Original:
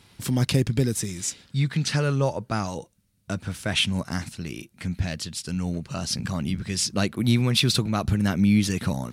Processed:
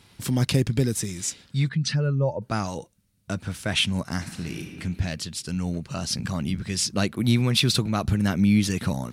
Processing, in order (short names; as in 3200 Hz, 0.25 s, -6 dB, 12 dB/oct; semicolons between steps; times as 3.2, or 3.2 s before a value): 1.69–2.42 spectral contrast raised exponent 1.6; 4.18–4.72 reverb throw, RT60 1.9 s, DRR 2.5 dB